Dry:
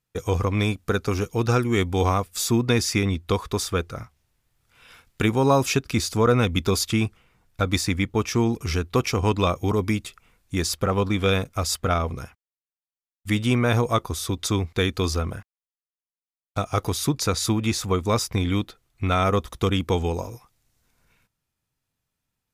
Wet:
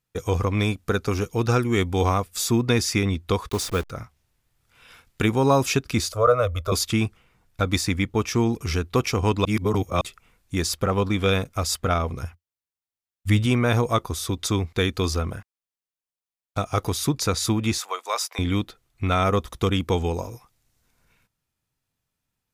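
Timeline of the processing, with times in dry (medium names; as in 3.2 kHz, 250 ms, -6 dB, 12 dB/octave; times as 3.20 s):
3.49–3.90 s: send-on-delta sampling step -32.5 dBFS
6.12–6.72 s: FFT filter 100 Hz 0 dB, 170 Hz -24 dB, 380 Hz -13 dB, 590 Hz +14 dB, 860 Hz -14 dB, 1.2 kHz +8 dB, 1.7 kHz -10 dB, 6.1 kHz -10 dB, 12 kHz -4 dB
9.45–10.01 s: reverse
12.22–13.46 s: peaking EQ 86 Hz +12 dB
17.78–18.39 s: high-pass 630 Hz 24 dB/octave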